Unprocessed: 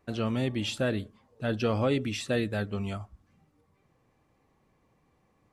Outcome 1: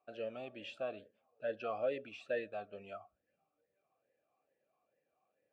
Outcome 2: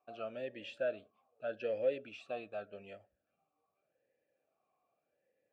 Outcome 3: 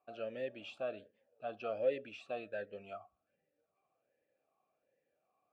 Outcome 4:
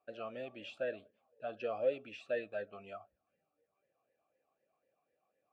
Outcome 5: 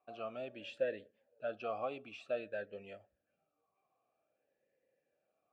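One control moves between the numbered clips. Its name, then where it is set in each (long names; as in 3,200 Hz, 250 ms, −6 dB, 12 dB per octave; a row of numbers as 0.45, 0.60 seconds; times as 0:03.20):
formant filter swept between two vowels, speed: 2.3, 0.84, 1.3, 4, 0.52 Hertz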